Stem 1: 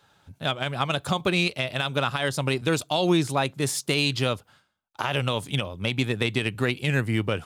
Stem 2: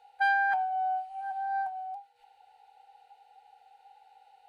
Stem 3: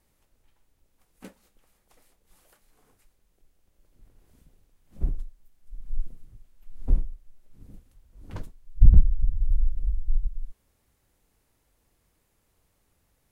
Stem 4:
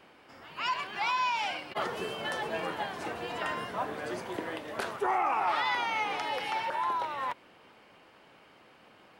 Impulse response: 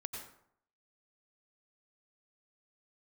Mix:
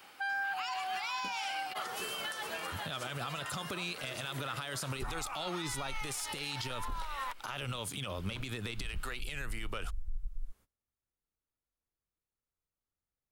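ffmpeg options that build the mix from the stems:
-filter_complex "[0:a]alimiter=limit=-20.5dB:level=0:latency=1:release=64,adelay=2450,volume=1.5dB[link_01];[1:a]highpass=frequency=890:poles=1,volume=-4dB[link_02];[2:a]agate=range=-24dB:threshold=-49dB:ratio=16:detection=peak,volume=-2dB[link_03];[3:a]alimiter=level_in=3.5dB:limit=-24dB:level=0:latency=1:release=397,volume=-3.5dB,crystalizer=i=8:c=0,volume=-7dB[link_04];[link_01][link_02]amix=inputs=2:normalize=0,highshelf=frequency=2900:gain=10,acompressor=threshold=-29dB:ratio=2,volume=0dB[link_05];[link_03][link_04][link_05]amix=inputs=3:normalize=0,equalizer=frequency=1300:width_type=o:width=0.42:gain=6,acrossover=split=470[link_06][link_07];[link_06]acompressor=threshold=-29dB:ratio=5[link_08];[link_08][link_07]amix=inputs=2:normalize=0,alimiter=level_in=4dB:limit=-24dB:level=0:latency=1:release=128,volume=-4dB"

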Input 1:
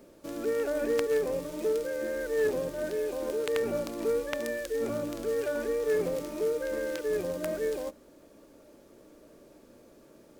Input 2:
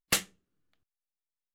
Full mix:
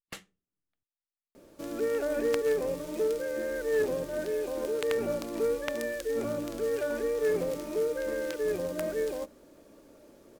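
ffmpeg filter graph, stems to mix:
ffmpeg -i stem1.wav -i stem2.wav -filter_complex "[0:a]adelay=1350,volume=0dB[link_01];[1:a]highshelf=frequency=4000:gain=-10,volume=-12.5dB[link_02];[link_01][link_02]amix=inputs=2:normalize=0" out.wav

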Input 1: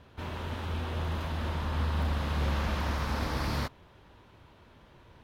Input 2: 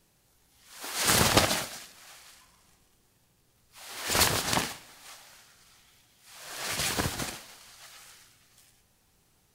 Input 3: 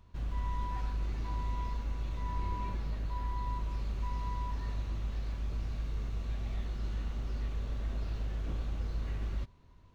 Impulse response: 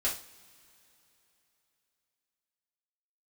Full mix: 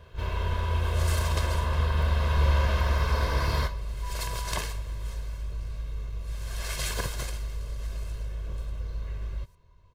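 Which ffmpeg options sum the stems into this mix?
-filter_complex "[0:a]volume=-1.5dB,asplit=2[link_01][link_02];[link_02]volume=-9dB[link_03];[1:a]volume=-5dB,afade=type=in:start_time=4.25:duration=0.41:silence=0.316228[link_04];[2:a]volume=-2.5dB[link_05];[3:a]atrim=start_sample=2205[link_06];[link_03][link_06]afir=irnorm=-1:irlink=0[link_07];[link_01][link_04][link_05][link_07]amix=inputs=4:normalize=0,aecho=1:1:1.9:0.69"

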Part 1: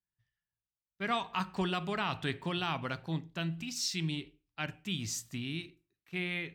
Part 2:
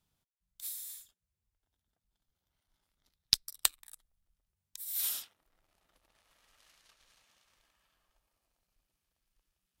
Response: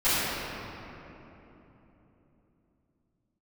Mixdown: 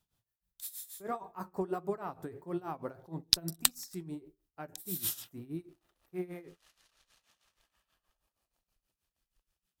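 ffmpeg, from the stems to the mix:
-filter_complex "[0:a]firequalizer=gain_entry='entry(220,0);entry(360,10);entry(3100,-24);entry(4800,-8);entry(13000,14)':delay=0.05:min_phase=1,flanger=delay=5.1:depth=6.6:regen=55:speed=1.6:shape=sinusoidal,volume=-0.5dB[link_01];[1:a]bandreject=frequency=2200:width=16,volume=1.5dB[link_02];[link_01][link_02]amix=inputs=2:normalize=0,tremolo=f=6.3:d=0.84"

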